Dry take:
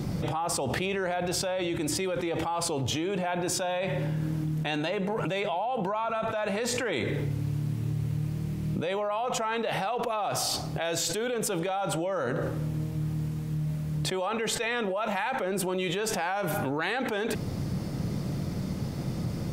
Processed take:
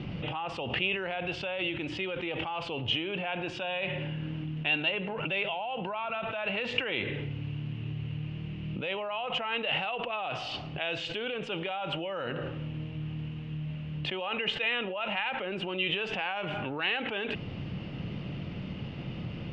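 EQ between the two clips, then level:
transistor ladder low-pass 3,000 Hz, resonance 80%
+6.5 dB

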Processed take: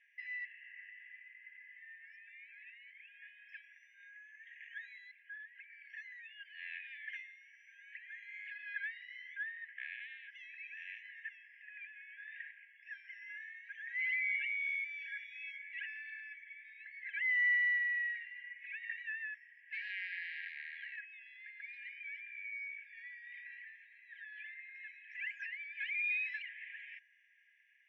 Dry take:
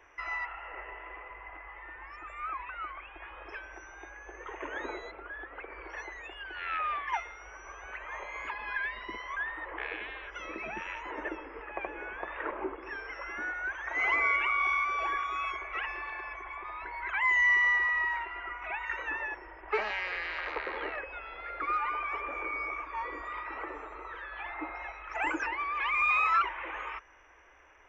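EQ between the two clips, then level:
linear-phase brick-wall high-pass 1,600 Hz
high-frequency loss of the air 310 metres
−3.0 dB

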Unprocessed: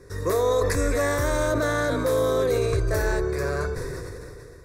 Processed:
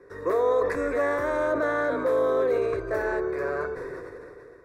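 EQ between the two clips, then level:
three-way crossover with the lows and the highs turned down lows −18 dB, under 250 Hz, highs −20 dB, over 2,400 Hz
0.0 dB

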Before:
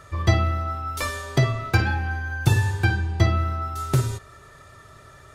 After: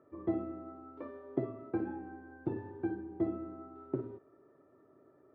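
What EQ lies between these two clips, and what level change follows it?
four-pole ladder band-pass 340 Hz, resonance 60%
high-frequency loss of the air 240 metres
+2.0 dB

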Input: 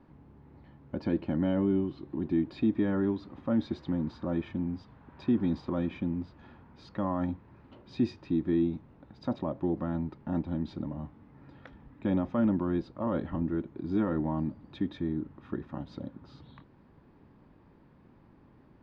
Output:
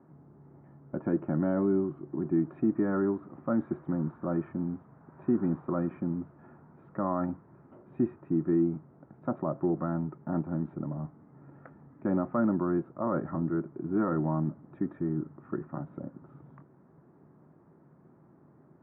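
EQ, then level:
dynamic equaliser 1,300 Hz, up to +6 dB, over −53 dBFS, Q 1.6
high-frequency loss of the air 500 metres
loudspeaker in its box 130–2,000 Hz, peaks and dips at 150 Hz +9 dB, 370 Hz +6 dB, 670 Hz +7 dB, 1,300 Hz +6 dB
−1.5 dB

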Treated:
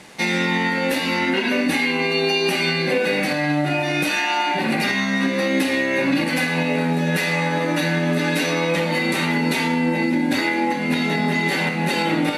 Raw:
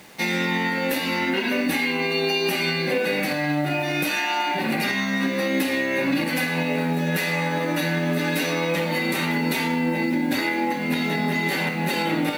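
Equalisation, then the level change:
low-pass filter 11,000 Hz 24 dB per octave
+3.0 dB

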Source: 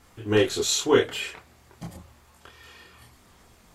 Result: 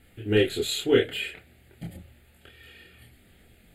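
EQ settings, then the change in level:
phaser with its sweep stopped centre 2,500 Hz, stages 4
+1.0 dB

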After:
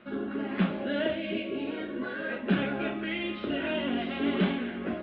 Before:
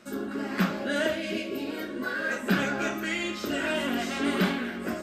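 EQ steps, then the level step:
Butterworth low-pass 3,500 Hz 48 dB per octave
dynamic equaliser 1,400 Hz, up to −7 dB, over −42 dBFS, Q 1
0.0 dB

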